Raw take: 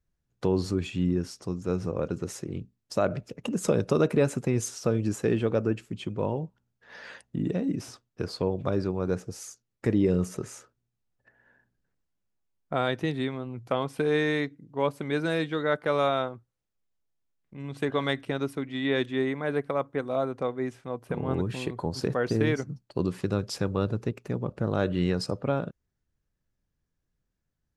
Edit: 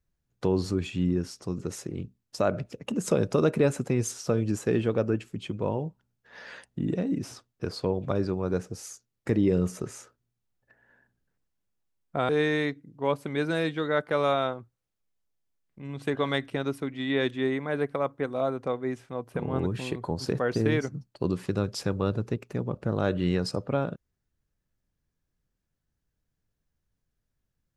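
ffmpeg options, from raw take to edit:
ffmpeg -i in.wav -filter_complex "[0:a]asplit=3[link_01][link_02][link_03];[link_01]atrim=end=1.582[link_04];[link_02]atrim=start=2.148:end=12.862[link_05];[link_03]atrim=start=14.038[link_06];[link_04][link_05]acrossfade=duration=0.004:curve1=hsin:curve2=hsin[link_07];[link_07][link_06]acrossfade=duration=0.004:curve1=hsin:curve2=hsin" out.wav

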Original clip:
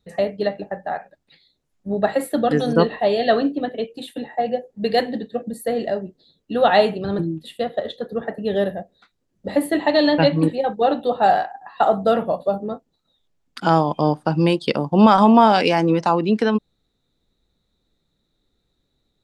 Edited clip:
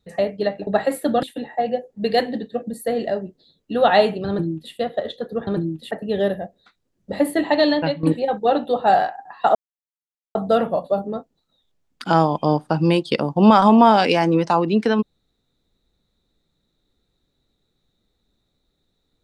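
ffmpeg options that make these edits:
ffmpeg -i in.wav -filter_complex "[0:a]asplit=7[link_01][link_02][link_03][link_04][link_05][link_06][link_07];[link_01]atrim=end=0.672[link_08];[link_02]atrim=start=1.958:end=2.522[link_09];[link_03]atrim=start=4.028:end=8.272[link_10];[link_04]atrim=start=7.088:end=7.532[link_11];[link_05]atrim=start=8.268:end=10.39,asetpts=PTS-STARTPTS,afade=type=out:start_time=1.712:duration=0.41:silence=0.188365[link_12];[link_06]atrim=start=10.39:end=11.91,asetpts=PTS-STARTPTS,afade=type=in:duration=0.004:curve=hsin:silence=0.188365,afade=type=out:start_time=1.516:duration=0.004:curve=hsin,apad=pad_dur=0.8[link_13];[link_07]atrim=start=11.91,asetpts=PTS-STARTPTS,afade=type=in:duration=0.004:curve=hsin[link_14];[link_08][link_09]acrossfade=duration=0.004:curve1=hsin:curve2=hsin[link_15];[link_15][link_10]acrossfade=duration=0.004:curve1=hsin:curve2=hsin[link_16];[link_16][link_11]acrossfade=duration=0.004:curve1=hsin:curve2=hsin[link_17];[link_12][link_13][link_14]concat=n=3:v=0:a=1[link_18];[link_17][link_18]acrossfade=duration=0.004:curve1=hsin:curve2=hsin" out.wav

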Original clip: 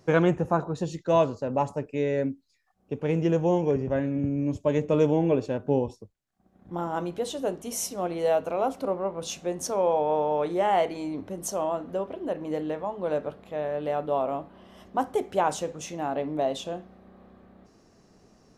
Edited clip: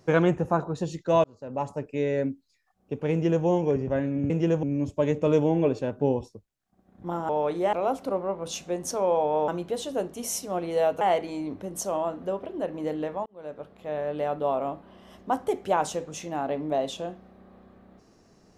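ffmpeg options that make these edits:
ffmpeg -i in.wav -filter_complex "[0:a]asplit=9[link_01][link_02][link_03][link_04][link_05][link_06][link_07][link_08][link_09];[link_01]atrim=end=1.24,asetpts=PTS-STARTPTS,afade=type=out:start_time=1.236:duration=0.004:curve=hsin[link_10];[link_02]atrim=start=1.24:end=4.302,asetpts=PTS-STARTPTS,afade=type=in:duration=0.86:curve=qsin[link_11];[link_03]atrim=start=3.118:end=3.452[link_12];[link_04]atrim=start=4.298:end=6.962[link_13];[link_05]atrim=start=10.238:end=10.682[link_14];[link_06]atrim=start=8.488:end=10.242[link_15];[link_07]atrim=start=6.958:end=8.492[link_16];[link_08]atrim=start=10.678:end=12.93,asetpts=PTS-STARTPTS,afade=type=out:start_time=2.248:duration=0.004:curve=hsin[link_17];[link_09]atrim=start=12.93,asetpts=PTS-STARTPTS,afade=type=in:duration=0.74[link_18];[link_10][link_11]concat=n=2:v=0:a=1[link_19];[link_19][link_12]acrossfade=duration=0.004:curve1=hsin:curve2=hsin[link_20];[link_20][link_13]acrossfade=duration=0.004:curve1=hsin:curve2=hsin[link_21];[link_21][link_14]acrossfade=duration=0.004:curve1=hsin:curve2=hsin[link_22];[link_22][link_15]acrossfade=duration=0.004:curve1=hsin:curve2=hsin[link_23];[link_23][link_16]acrossfade=duration=0.004:curve1=hsin:curve2=hsin[link_24];[link_17][link_18]concat=n=2:v=0:a=1[link_25];[link_24][link_25]acrossfade=duration=0.004:curve1=hsin:curve2=hsin" out.wav

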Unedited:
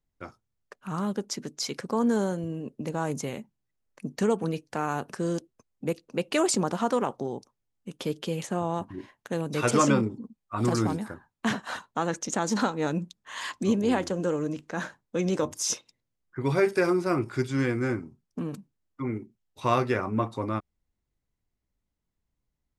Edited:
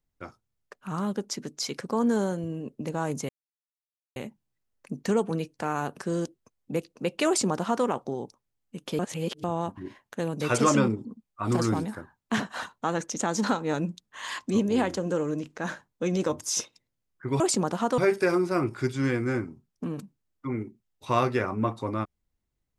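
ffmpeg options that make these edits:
ffmpeg -i in.wav -filter_complex "[0:a]asplit=6[link_01][link_02][link_03][link_04][link_05][link_06];[link_01]atrim=end=3.29,asetpts=PTS-STARTPTS,afade=type=out:start_time=3.286:duration=0.004:curve=hsin,apad=pad_dur=0.87[link_07];[link_02]atrim=start=3.29:end=8.122,asetpts=PTS-STARTPTS,afade=type=in:duration=0.004:curve=hsin[link_08];[link_03]atrim=start=8.118:end=8.572,asetpts=PTS-STARTPTS,areverse[link_09];[link_04]atrim=start=8.568:end=16.532[link_10];[link_05]atrim=start=6.398:end=6.982[link_11];[link_06]atrim=start=16.528[link_12];[link_07][link_08]concat=n=2:v=0:a=1[link_13];[link_13][link_09]acrossfade=duration=0.004:curve1=hsin:curve2=hsin[link_14];[link_14][link_10]acrossfade=duration=0.004:curve1=hsin:curve2=hsin[link_15];[link_15][link_11]acrossfade=duration=0.004:curve1=hsin:curve2=hsin[link_16];[link_16][link_12]acrossfade=duration=0.004:curve1=hsin:curve2=hsin" out.wav

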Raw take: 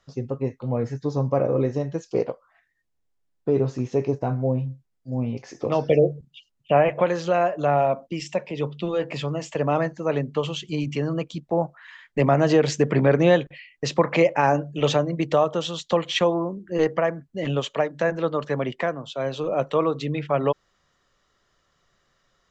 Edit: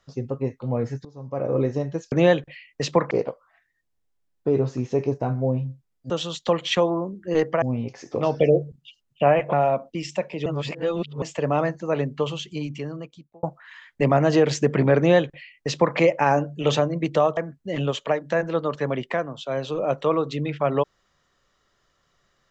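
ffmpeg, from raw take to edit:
ffmpeg -i in.wav -filter_complex "[0:a]asplit=11[link_01][link_02][link_03][link_04][link_05][link_06][link_07][link_08][link_09][link_10][link_11];[link_01]atrim=end=1.05,asetpts=PTS-STARTPTS,afade=type=out:start_time=1.046:duration=0.004:curve=hsin:silence=0.0891251[link_12];[link_02]atrim=start=1.05:end=2.122,asetpts=PTS-STARTPTS,afade=type=in:duration=0.5:curve=qua:silence=0.0891251[link_13];[link_03]atrim=start=13.148:end=14.142[link_14];[link_04]atrim=start=2.118:end=5.112[link_15];[link_05]atrim=start=15.538:end=17.062[link_16];[link_06]atrim=start=5.108:end=7.022[link_17];[link_07]atrim=start=7.698:end=8.632[link_18];[link_08]atrim=start=8.628:end=9.392,asetpts=PTS-STARTPTS,areverse[link_19];[link_09]atrim=start=9.388:end=11.6,asetpts=PTS-STARTPTS,afade=type=out:start_time=1.002:duration=1.21[link_20];[link_10]atrim=start=11.6:end=15.542,asetpts=PTS-STARTPTS,afade=type=in:duration=0.004:curve=hsin[link_21];[link_11]atrim=start=17.058[link_22];[link_12][link_13]concat=n=2:v=0:a=1[link_23];[link_23][link_14]acrossfade=duration=0.004:curve1=hsin:curve2=hsin[link_24];[link_24][link_15]acrossfade=duration=0.004:curve1=hsin:curve2=hsin[link_25];[link_25][link_16]acrossfade=duration=0.004:curve1=hsin:curve2=hsin[link_26];[link_26][link_17]acrossfade=duration=0.004:curve1=hsin:curve2=hsin[link_27];[link_27][link_18]acrossfade=duration=0.004:curve1=hsin:curve2=hsin[link_28];[link_28][link_19]acrossfade=duration=0.004:curve1=hsin:curve2=hsin[link_29];[link_20][link_21]concat=n=2:v=0:a=1[link_30];[link_29][link_30]acrossfade=duration=0.004:curve1=hsin:curve2=hsin[link_31];[link_31][link_22]acrossfade=duration=0.004:curve1=hsin:curve2=hsin" out.wav

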